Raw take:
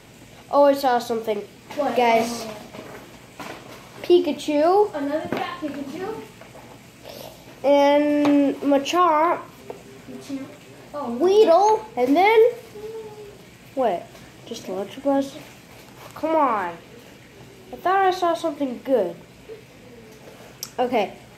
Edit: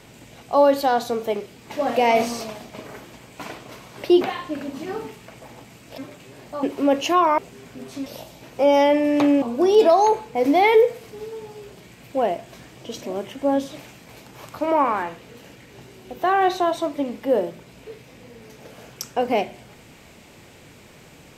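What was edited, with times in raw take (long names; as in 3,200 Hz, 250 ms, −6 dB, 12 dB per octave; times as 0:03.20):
0:04.21–0:05.34: remove
0:07.11–0:08.47: swap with 0:10.39–0:11.04
0:09.22–0:09.71: remove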